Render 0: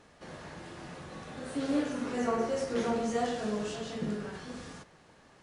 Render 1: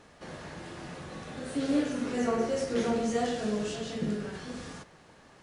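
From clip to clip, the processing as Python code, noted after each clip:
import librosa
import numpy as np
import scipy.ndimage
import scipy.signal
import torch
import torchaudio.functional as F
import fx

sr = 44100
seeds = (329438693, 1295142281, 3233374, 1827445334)

y = fx.dynamic_eq(x, sr, hz=1000.0, q=1.2, threshold_db=-49.0, ratio=4.0, max_db=-5)
y = y * librosa.db_to_amplitude(3.0)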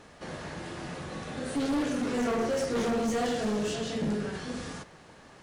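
y = np.clip(x, -10.0 ** (-29.0 / 20.0), 10.0 ** (-29.0 / 20.0))
y = y * librosa.db_to_amplitude(3.5)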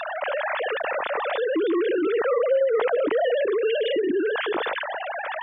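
y = fx.sine_speech(x, sr)
y = fx.env_flatten(y, sr, amount_pct=70)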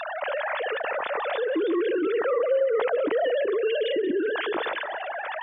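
y = fx.echo_feedback(x, sr, ms=185, feedback_pct=42, wet_db=-17.0)
y = y * librosa.db_to_amplitude(-2.0)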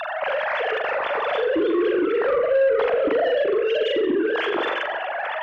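y = fx.room_flutter(x, sr, wall_m=7.3, rt60_s=0.44)
y = fx.cheby_harmonics(y, sr, harmonics=(4, 5, 7), levels_db=(-37, -18, -43), full_scale_db=-10.5)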